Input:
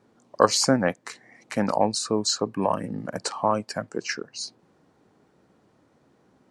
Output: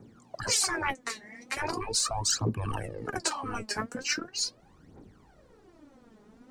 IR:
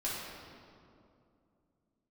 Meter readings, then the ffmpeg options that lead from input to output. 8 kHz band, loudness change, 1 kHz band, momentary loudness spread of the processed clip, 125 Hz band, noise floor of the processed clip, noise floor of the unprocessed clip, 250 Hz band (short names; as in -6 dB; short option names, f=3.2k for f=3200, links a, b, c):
+0.5 dB, -5.0 dB, -8.0 dB, 11 LU, -2.0 dB, -59 dBFS, -63 dBFS, -11.0 dB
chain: -filter_complex "[0:a]afftfilt=real='re*lt(hypot(re,im),0.126)':imag='im*lt(hypot(re,im),0.126)':win_size=1024:overlap=0.75,acrossover=split=370|780[a][b][c];[a]acontrast=27[d];[d][b][c]amix=inputs=3:normalize=0,aphaser=in_gain=1:out_gain=1:delay=4.9:decay=0.73:speed=0.4:type=triangular,asubboost=boost=5:cutoff=57"